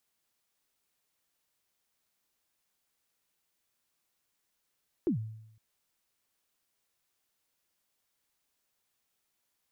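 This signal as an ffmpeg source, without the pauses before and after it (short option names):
-f lavfi -i "aevalsrc='0.0708*pow(10,-3*t/0.81)*sin(2*PI*(390*0.107/log(110/390)*(exp(log(110/390)*min(t,0.107)/0.107)-1)+110*max(t-0.107,0)))':d=0.51:s=44100"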